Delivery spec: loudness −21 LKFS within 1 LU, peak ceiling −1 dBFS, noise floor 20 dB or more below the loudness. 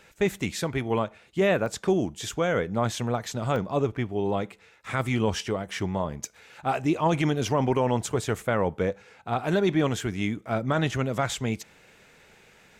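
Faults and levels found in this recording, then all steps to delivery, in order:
number of dropouts 3; longest dropout 1.1 ms; integrated loudness −27.0 LKFS; sample peak −14.0 dBFS; target loudness −21.0 LKFS
→ repair the gap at 0:01.66/0:03.56/0:10.01, 1.1 ms
level +6 dB

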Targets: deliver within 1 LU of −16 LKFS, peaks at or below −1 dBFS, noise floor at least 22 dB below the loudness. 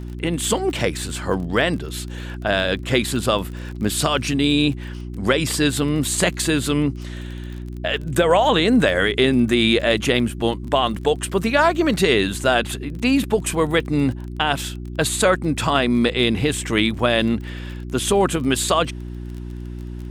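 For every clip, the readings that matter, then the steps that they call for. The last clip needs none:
crackle rate 28 per second; mains hum 60 Hz; hum harmonics up to 360 Hz; level of the hum −28 dBFS; integrated loudness −20.0 LKFS; sample peak −4.0 dBFS; target loudness −16.0 LKFS
→ click removal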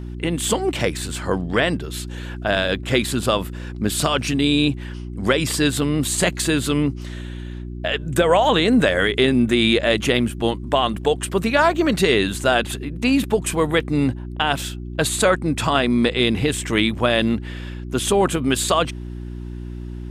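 crackle rate 0 per second; mains hum 60 Hz; hum harmonics up to 360 Hz; level of the hum −28 dBFS
→ hum removal 60 Hz, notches 6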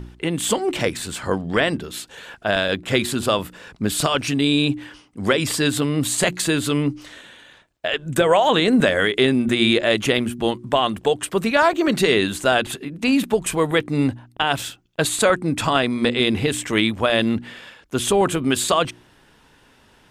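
mains hum none found; integrated loudness −20.5 LKFS; sample peak −3.5 dBFS; target loudness −16.0 LKFS
→ level +4.5 dB
brickwall limiter −1 dBFS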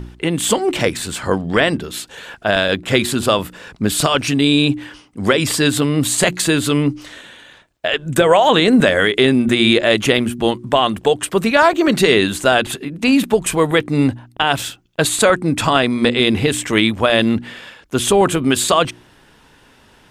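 integrated loudness −16.0 LKFS; sample peak −1.0 dBFS; background noise floor −50 dBFS

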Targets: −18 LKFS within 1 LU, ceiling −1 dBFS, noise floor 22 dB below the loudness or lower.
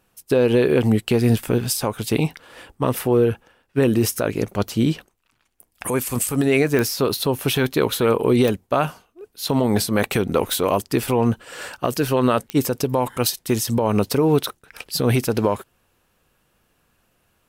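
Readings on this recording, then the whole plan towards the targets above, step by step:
number of clicks 4; integrated loudness −20.5 LKFS; sample peak −5.5 dBFS; target loudness −18.0 LKFS
→ click removal
level +2.5 dB

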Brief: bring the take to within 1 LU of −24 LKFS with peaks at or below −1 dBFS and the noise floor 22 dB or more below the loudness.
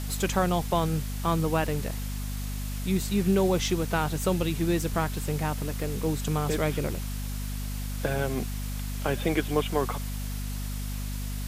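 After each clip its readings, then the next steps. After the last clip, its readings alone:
mains hum 50 Hz; hum harmonics up to 250 Hz; level of the hum −30 dBFS; background noise floor −33 dBFS; target noise floor −51 dBFS; integrated loudness −29.0 LKFS; sample peak −12.0 dBFS; target loudness −24.0 LKFS
→ mains-hum notches 50/100/150/200/250 Hz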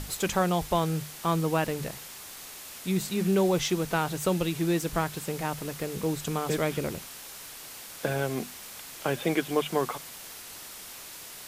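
mains hum none found; background noise floor −44 dBFS; target noise floor −51 dBFS
→ broadband denoise 7 dB, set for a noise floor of −44 dBFS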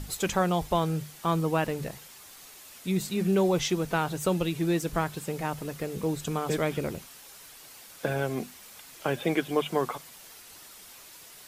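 background noise floor −50 dBFS; target noise floor −51 dBFS
→ broadband denoise 6 dB, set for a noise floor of −50 dBFS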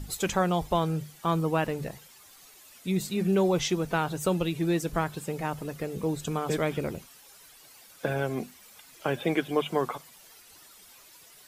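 background noise floor −54 dBFS; integrated loudness −29.0 LKFS; sample peak −13.0 dBFS; target loudness −24.0 LKFS
→ level +5 dB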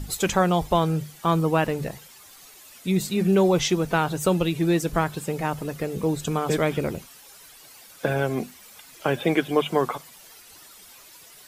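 integrated loudness −24.0 LKFS; sample peak −8.0 dBFS; background noise floor −49 dBFS

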